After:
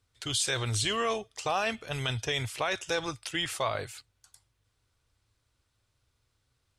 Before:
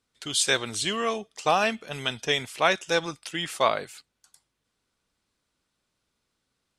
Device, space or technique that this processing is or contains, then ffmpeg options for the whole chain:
car stereo with a boomy subwoofer: -af "lowshelf=frequency=140:width_type=q:width=3:gain=8.5,alimiter=limit=-18.5dB:level=0:latency=1:release=25"

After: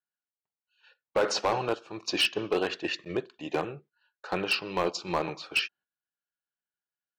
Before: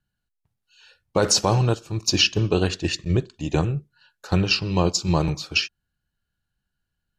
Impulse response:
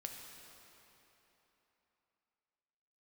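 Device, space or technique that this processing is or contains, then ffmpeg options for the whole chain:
walkie-talkie: -af "highpass=450,lowpass=2800,asoftclip=type=hard:threshold=-19dB,agate=range=-12dB:threshold=-54dB:ratio=16:detection=peak"

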